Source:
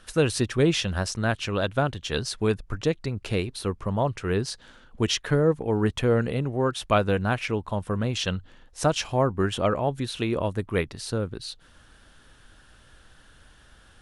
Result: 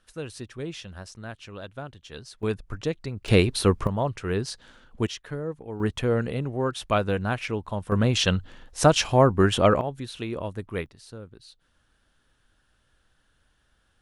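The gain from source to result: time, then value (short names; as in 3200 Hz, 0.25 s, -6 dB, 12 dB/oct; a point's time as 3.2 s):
-13.5 dB
from 2.43 s -3.5 dB
from 3.28 s +8 dB
from 3.87 s -1.5 dB
from 5.07 s -11 dB
from 5.8 s -2 dB
from 7.92 s +5 dB
from 9.81 s -5.5 dB
from 10.86 s -13.5 dB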